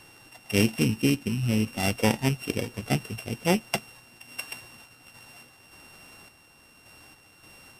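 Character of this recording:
a buzz of ramps at a fixed pitch in blocks of 16 samples
sample-and-hold tremolo
MP3

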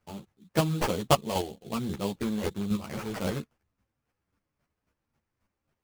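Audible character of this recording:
chopped level 3.7 Hz, depth 60%, duty 20%
aliases and images of a low sample rate 3,800 Hz, jitter 20%
a shimmering, thickened sound

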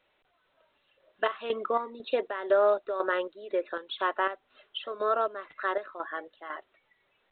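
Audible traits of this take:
chopped level 2 Hz, depth 65%, duty 55%
A-law companding

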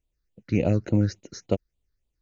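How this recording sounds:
phaser sweep stages 6, 3.5 Hz, lowest notch 720–1,600 Hz

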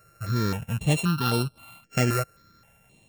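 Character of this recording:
a buzz of ramps at a fixed pitch in blocks of 32 samples
notches that jump at a steady rate 3.8 Hz 920–6,700 Hz

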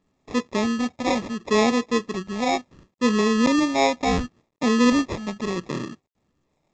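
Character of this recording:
phaser sweep stages 8, 0.71 Hz, lowest notch 420–1,300 Hz
aliases and images of a low sample rate 1,500 Hz, jitter 0%
mu-law

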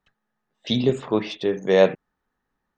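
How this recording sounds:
background noise floor −80 dBFS
spectral slope −4.5 dB per octave

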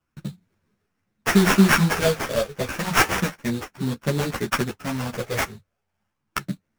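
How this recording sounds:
a buzz of ramps at a fixed pitch in blocks of 8 samples
phaser sweep stages 12, 0.32 Hz, lowest notch 280–1,300 Hz
aliases and images of a low sample rate 4,000 Hz, jitter 20%
a shimmering, thickened sound

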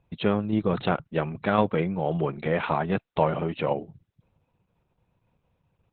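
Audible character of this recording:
tremolo saw down 1.9 Hz, depth 30%
Opus

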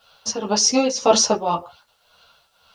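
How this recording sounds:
tremolo triangle 1.9 Hz, depth 80%
a quantiser's noise floor 12 bits, dither none
a shimmering, thickened sound

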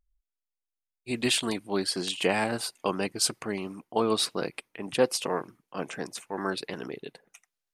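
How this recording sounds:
background noise floor −88 dBFS
spectral slope −3.0 dB per octave

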